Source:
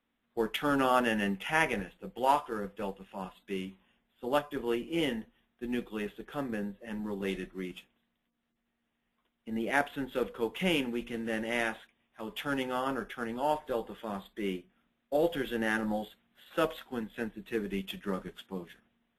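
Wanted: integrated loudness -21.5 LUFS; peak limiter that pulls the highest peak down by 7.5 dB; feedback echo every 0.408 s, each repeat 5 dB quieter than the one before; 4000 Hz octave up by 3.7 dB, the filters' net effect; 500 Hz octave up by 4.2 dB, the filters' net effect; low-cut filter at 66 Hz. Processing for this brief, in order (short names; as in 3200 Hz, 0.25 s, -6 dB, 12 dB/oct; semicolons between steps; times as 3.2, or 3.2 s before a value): HPF 66 Hz; bell 500 Hz +5 dB; bell 4000 Hz +5.5 dB; limiter -18 dBFS; feedback echo 0.408 s, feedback 56%, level -5 dB; gain +10 dB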